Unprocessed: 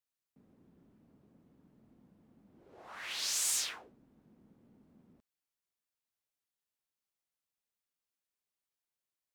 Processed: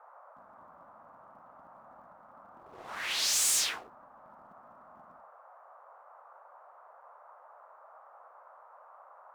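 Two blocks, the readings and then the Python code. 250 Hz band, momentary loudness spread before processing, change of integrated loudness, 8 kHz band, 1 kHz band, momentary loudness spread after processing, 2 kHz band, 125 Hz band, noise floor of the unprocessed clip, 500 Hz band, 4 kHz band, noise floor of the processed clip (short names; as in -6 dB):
+1.5 dB, 20 LU, +5.0 dB, +5.5 dB, +10.5 dB, 18 LU, +7.0 dB, n/a, under -85 dBFS, +9.5 dB, +6.0 dB, -57 dBFS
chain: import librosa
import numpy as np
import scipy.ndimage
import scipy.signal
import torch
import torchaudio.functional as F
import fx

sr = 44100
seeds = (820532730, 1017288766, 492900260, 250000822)

y = fx.hum_notches(x, sr, base_hz=50, count=4)
y = fx.leveller(y, sr, passes=2)
y = fx.dmg_noise_band(y, sr, seeds[0], low_hz=560.0, high_hz=1300.0, level_db=-55.0)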